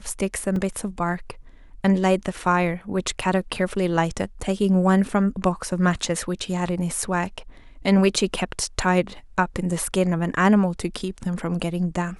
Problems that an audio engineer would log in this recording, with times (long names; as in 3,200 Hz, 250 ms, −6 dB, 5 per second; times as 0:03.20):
0:00.56: drop-out 2.4 ms